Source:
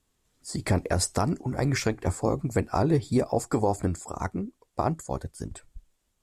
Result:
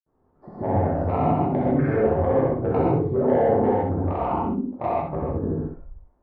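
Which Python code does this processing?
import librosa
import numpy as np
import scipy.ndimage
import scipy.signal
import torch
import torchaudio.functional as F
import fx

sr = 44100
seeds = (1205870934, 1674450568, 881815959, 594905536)

p1 = scipy.signal.sosfilt(scipy.signal.butter(4, 1000.0, 'lowpass', fs=sr, output='sos'), x)
p2 = fx.low_shelf(p1, sr, hz=220.0, db=-10.0)
p3 = fx.over_compress(p2, sr, threshold_db=-38.0, ratio=-1.0)
p4 = p2 + F.gain(torch.from_numpy(p3), -1.0).numpy()
p5 = fx.granulator(p4, sr, seeds[0], grain_ms=100.0, per_s=20.0, spray_ms=100.0, spread_st=0)
p6 = 10.0 ** (-17.5 / 20.0) * np.tanh(p5 / 10.0 ** (-17.5 / 20.0))
p7 = p6 + fx.echo_feedback(p6, sr, ms=64, feedback_pct=21, wet_db=-5.0, dry=0)
y = fx.rev_gated(p7, sr, seeds[1], gate_ms=180, shape='flat', drr_db=-7.0)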